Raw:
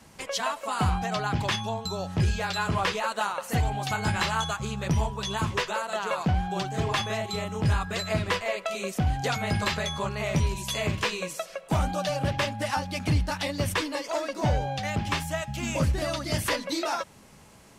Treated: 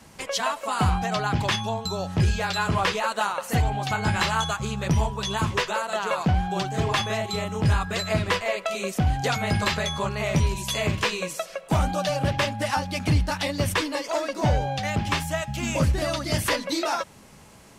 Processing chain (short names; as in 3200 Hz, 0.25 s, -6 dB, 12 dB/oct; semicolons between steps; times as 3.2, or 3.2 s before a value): 3.62–4.12 bell 13000 Hz -6 dB 1.7 oct; gain +3 dB